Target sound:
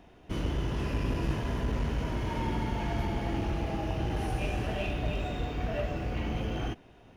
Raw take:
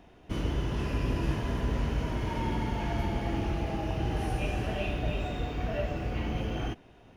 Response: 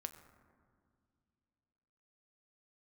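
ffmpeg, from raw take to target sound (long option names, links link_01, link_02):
-af "aeval=exprs='clip(val(0),-1,0.0447)':channel_layout=same"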